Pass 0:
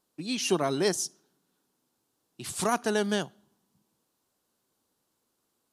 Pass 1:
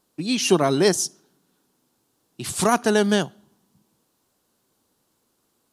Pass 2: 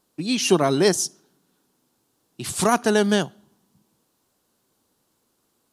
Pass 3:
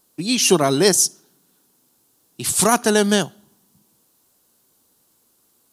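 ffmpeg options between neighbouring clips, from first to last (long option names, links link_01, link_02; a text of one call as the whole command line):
ffmpeg -i in.wav -af "lowshelf=frequency=320:gain=3,volume=7dB" out.wav
ffmpeg -i in.wav -af anull out.wav
ffmpeg -i in.wav -af "crystalizer=i=1.5:c=0,volume=2dB" out.wav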